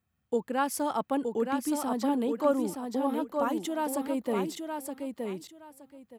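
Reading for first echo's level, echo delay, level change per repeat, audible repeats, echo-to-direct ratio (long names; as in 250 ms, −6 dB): −5.0 dB, 920 ms, −14.0 dB, 3, −5.0 dB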